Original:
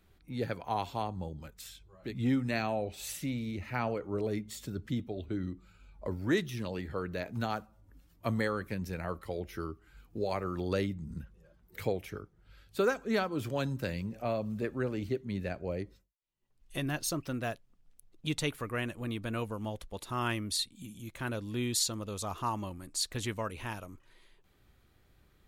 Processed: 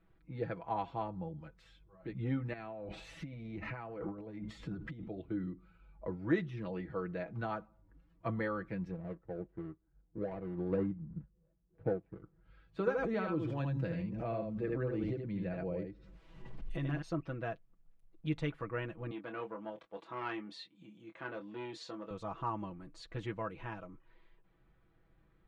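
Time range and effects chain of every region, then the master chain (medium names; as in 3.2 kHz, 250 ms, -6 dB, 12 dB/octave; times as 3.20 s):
2.53–5.08 s: transient shaper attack -1 dB, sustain +8 dB + compressor with a negative ratio -39 dBFS
8.91–12.23 s: median filter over 41 samples + tilt shelf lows +4 dB, about 1.5 kHz + upward expansion, over -51 dBFS
12.79–17.02 s: peaking EQ 1.3 kHz -4 dB 2.3 oct + delay 78 ms -5 dB + swell ahead of each attack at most 25 dB/s
19.11–22.11 s: band-pass 290–7600 Hz + doubling 24 ms -8 dB + transformer saturation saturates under 1.7 kHz
whole clip: low-pass 1.9 kHz 12 dB/octave; comb 6.1 ms, depth 69%; trim -4.5 dB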